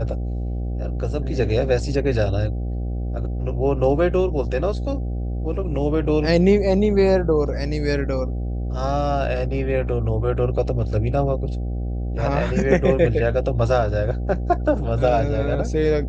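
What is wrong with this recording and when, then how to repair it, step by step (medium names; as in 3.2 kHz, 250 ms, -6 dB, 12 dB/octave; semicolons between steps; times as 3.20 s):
buzz 60 Hz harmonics 13 -25 dBFS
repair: de-hum 60 Hz, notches 13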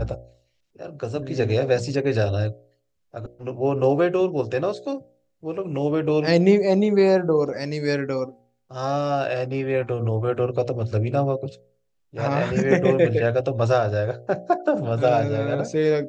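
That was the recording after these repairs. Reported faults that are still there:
nothing left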